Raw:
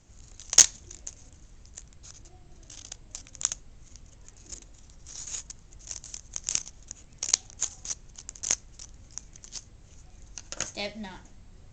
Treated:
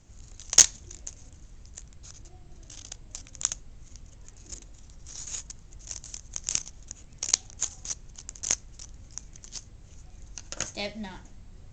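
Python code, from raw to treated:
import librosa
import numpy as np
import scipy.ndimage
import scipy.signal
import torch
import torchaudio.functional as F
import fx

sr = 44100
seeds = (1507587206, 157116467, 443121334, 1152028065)

y = fx.low_shelf(x, sr, hz=210.0, db=3.5)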